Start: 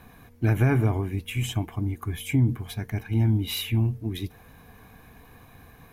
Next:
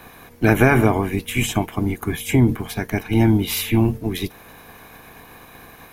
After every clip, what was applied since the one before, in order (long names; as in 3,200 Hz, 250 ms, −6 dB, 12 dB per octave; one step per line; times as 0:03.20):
ceiling on every frequency bin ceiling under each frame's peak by 15 dB
level +6.5 dB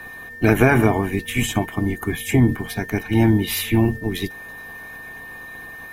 spectral magnitudes quantised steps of 15 dB
steady tone 1,800 Hz −35 dBFS